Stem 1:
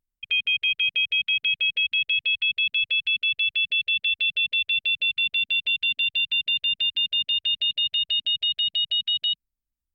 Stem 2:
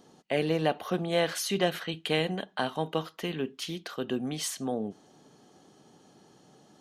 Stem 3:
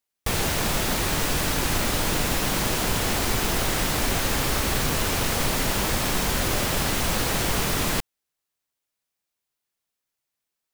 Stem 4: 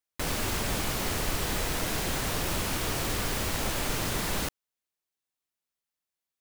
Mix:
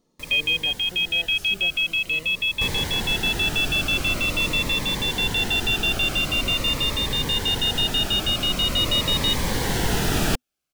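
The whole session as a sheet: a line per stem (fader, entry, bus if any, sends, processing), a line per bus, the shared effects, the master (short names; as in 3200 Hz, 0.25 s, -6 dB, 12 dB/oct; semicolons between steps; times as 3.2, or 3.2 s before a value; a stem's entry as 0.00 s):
+1.5 dB, 0.00 s, no send, dry
-12.5 dB, 0.00 s, no send, dry
-1.5 dB, 2.35 s, no send, high shelf 5300 Hz -7.5 dB
-11.0 dB, 0.00 s, no send, dry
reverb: off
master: vocal rider 2 s; cascading phaser falling 0.45 Hz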